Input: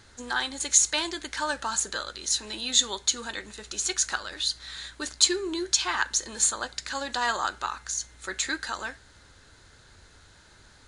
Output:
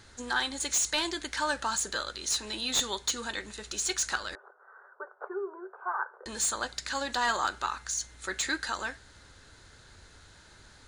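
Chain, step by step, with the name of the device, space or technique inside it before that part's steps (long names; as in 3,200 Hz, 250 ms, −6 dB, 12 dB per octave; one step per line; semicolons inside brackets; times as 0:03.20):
saturation between pre-emphasis and de-emphasis (high-shelf EQ 3,500 Hz +12 dB; soft clipping −14 dBFS, distortion −7 dB; high-shelf EQ 3,500 Hz −12 dB)
0:04.35–0:06.26: Chebyshev band-pass filter 390–1,500 Hz, order 5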